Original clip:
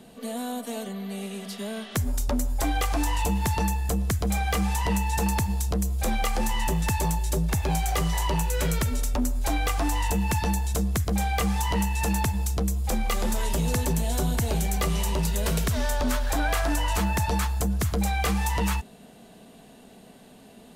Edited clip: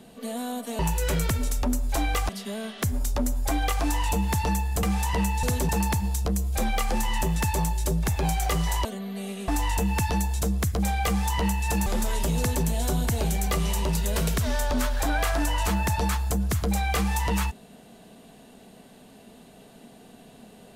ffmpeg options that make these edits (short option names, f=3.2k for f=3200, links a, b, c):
-filter_complex "[0:a]asplit=9[a][b][c][d][e][f][g][h][i];[a]atrim=end=0.792[j];[b]atrim=start=8.308:end=9.812[k];[c]atrim=start=1.418:end=3.962[l];[d]atrim=start=4.548:end=5.152[m];[e]atrim=start=13.688:end=13.952[n];[f]atrim=start=5.148:end=8.312[o];[g]atrim=start=0.788:end=1.422[p];[h]atrim=start=9.808:end=12.192[q];[i]atrim=start=13.158[r];[j][k]acrossfade=d=0.004:c1=hsin:c2=hsin[s];[s][l]acrossfade=d=0.004:c1=hsin:c2=hsin[t];[t][m]acrossfade=d=0.004:c1=hsin:c2=hsin[u];[u][n]acrossfade=d=0.004:c1=hsin:c2=hsin[v];[v][o]acrossfade=d=0.004:c1=hsin:c2=hsin[w];[w][p]acrossfade=d=0.004:c1=hsin:c2=hsin[x];[x][q]acrossfade=d=0.004:c1=hsin:c2=hsin[y];[y][r]acrossfade=d=0.004:c1=hsin:c2=hsin"